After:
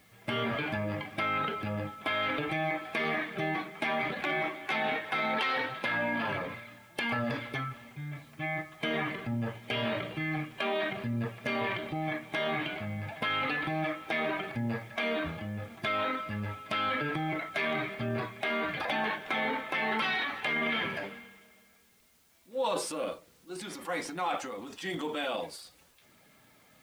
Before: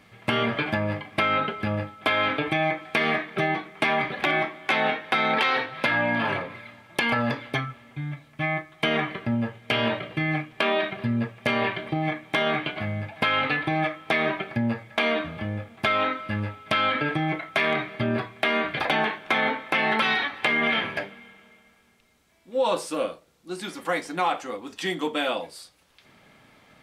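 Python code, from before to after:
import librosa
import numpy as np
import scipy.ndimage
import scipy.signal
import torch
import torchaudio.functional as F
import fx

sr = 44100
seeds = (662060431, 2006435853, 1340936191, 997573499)

y = fx.spec_quant(x, sr, step_db=15)
y = fx.transient(y, sr, attack_db=-2, sustain_db=8)
y = fx.quant_dither(y, sr, seeds[0], bits=10, dither='triangular')
y = y * librosa.db_to_amplitude(-7.0)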